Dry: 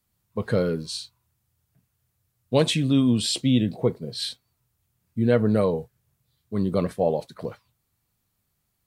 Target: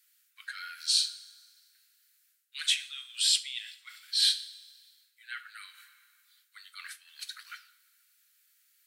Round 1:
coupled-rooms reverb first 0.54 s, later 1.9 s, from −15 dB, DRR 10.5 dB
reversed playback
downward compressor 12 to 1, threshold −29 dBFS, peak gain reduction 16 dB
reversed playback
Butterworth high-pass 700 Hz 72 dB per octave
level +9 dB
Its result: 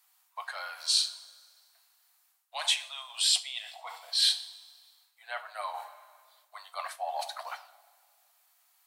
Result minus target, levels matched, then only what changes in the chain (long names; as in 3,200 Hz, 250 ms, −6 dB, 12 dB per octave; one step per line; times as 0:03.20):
1,000 Hz band +16.5 dB
change: Butterworth high-pass 1,400 Hz 72 dB per octave